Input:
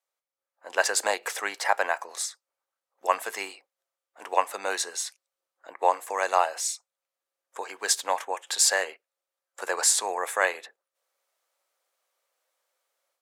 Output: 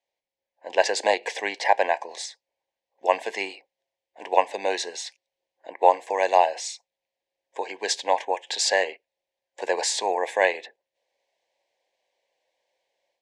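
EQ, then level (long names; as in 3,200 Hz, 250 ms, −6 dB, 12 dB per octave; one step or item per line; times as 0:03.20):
Butterworth band-reject 1,300 Hz, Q 1.5
high-frequency loss of the air 120 metres
high-shelf EQ 8,300 Hz −5.5 dB
+7.0 dB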